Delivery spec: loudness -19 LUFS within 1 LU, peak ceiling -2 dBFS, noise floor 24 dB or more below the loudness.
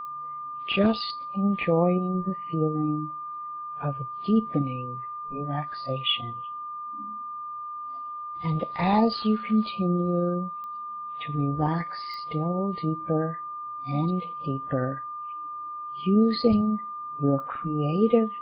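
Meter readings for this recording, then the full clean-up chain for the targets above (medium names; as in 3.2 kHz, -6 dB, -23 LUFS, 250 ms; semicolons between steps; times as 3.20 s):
clicks found 4; steady tone 1.2 kHz; tone level -33 dBFS; loudness -27.5 LUFS; peak level -8.0 dBFS; loudness target -19.0 LUFS
-> de-click; band-stop 1.2 kHz, Q 30; trim +8.5 dB; peak limiter -2 dBFS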